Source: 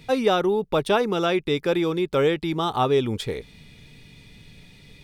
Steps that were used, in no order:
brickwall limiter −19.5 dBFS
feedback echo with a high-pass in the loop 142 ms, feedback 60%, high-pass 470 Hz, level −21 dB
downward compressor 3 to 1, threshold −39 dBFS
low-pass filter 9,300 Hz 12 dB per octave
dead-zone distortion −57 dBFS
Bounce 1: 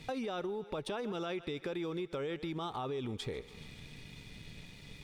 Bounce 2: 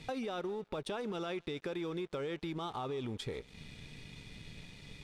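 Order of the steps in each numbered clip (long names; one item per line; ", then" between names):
low-pass filter, then dead-zone distortion, then feedback echo with a high-pass in the loop, then brickwall limiter, then downward compressor
brickwall limiter, then downward compressor, then feedback echo with a high-pass in the loop, then dead-zone distortion, then low-pass filter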